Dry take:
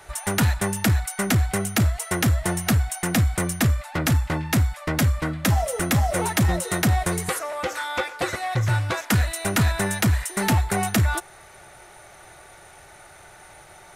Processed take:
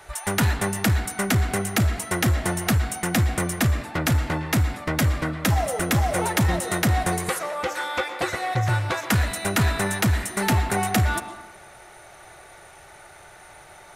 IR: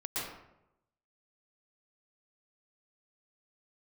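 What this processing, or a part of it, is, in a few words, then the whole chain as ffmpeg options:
filtered reverb send: -filter_complex "[0:a]asplit=2[a][b];[b]highpass=270,lowpass=5.3k[c];[1:a]atrim=start_sample=2205[d];[c][d]afir=irnorm=-1:irlink=0,volume=-11dB[e];[a][e]amix=inputs=2:normalize=0,volume=-1dB"

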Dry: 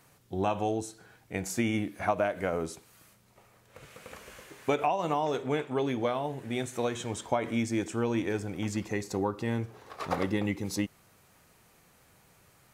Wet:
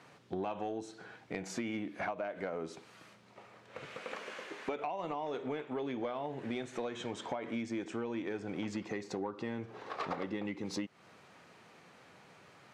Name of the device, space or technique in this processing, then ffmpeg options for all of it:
AM radio: -filter_complex "[0:a]asettb=1/sr,asplit=3[a][b][c];[a]atrim=end=3.974[d];[b]atrim=start=3.97:end=4.76,asetpts=PTS-STARTPTS,afade=t=in:d=0.004:c=qsin,afade=t=out:st=0.786:d=0.004:c=qsin,highpass=230[e];[c]atrim=start=4.756[f];[d][e]acrossfade=d=0.004:c1=hsin:c2=qsin[g];[g][f]acrossfade=d=0.004:c1=qsin:c2=hsin,highpass=180,lowpass=4.1k,acompressor=threshold=-39dB:ratio=8,asoftclip=type=tanh:threshold=-31dB,volume=5.5dB"

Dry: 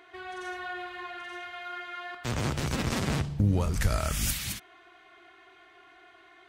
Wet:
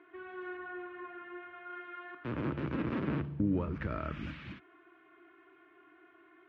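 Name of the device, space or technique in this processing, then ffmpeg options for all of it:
bass cabinet: -filter_complex "[0:a]asettb=1/sr,asplit=3[a][b][c];[a]atrim=end=0.574[d];[b]atrim=start=0.57:end=1.7,asetpts=PTS-STARTPTS,afade=t=in:d=0.004:c=qsin,afade=t=out:st=1.126:d=0.004:c=qsin,aemphasis=mode=reproduction:type=75fm[e];[c]atrim=start=1.696[f];[d][e]acrossfade=d=0.004:c1=hsin:c2=qsin[g];[g][f]acrossfade=d=0.004:c1=qsin:c2=hsin,highpass=f=78:w=0.5412,highpass=f=78:w=1.3066,equalizer=f=100:t=q:w=4:g=-10,equalizer=f=310:t=q:w=4:g=10,equalizer=f=750:t=q:w=4:g=-9,equalizer=f=2k:t=q:w=4:g=-5,lowpass=f=2.3k:w=0.5412,lowpass=f=2.3k:w=1.3066,volume=-4.5dB"

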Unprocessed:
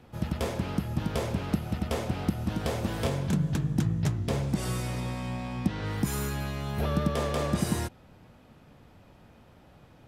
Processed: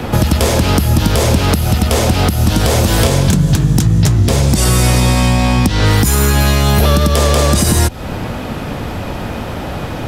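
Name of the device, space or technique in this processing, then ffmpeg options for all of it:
mastering chain: -filter_complex "[0:a]equalizer=f=150:t=o:w=0.77:g=-3,acrossover=split=84|4000[a][b][c];[a]acompressor=threshold=-43dB:ratio=4[d];[b]acompressor=threshold=-43dB:ratio=4[e];[c]acompressor=threshold=-47dB:ratio=4[f];[d][e][f]amix=inputs=3:normalize=0,acompressor=threshold=-46dB:ratio=1.5,asoftclip=type=tanh:threshold=-29.5dB,alimiter=level_in=34.5dB:limit=-1dB:release=50:level=0:latency=1,volume=-1dB"

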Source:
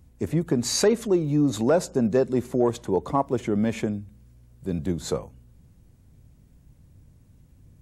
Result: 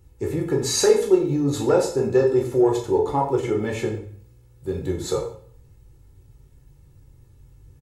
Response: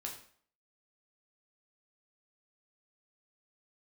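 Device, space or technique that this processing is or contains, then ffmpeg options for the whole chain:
microphone above a desk: -filter_complex "[0:a]aecho=1:1:2.3:0.72[a];[1:a]atrim=start_sample=2205[b];[a][b]afir=irnorm=-1:irlink=0,volume=2.5dB"

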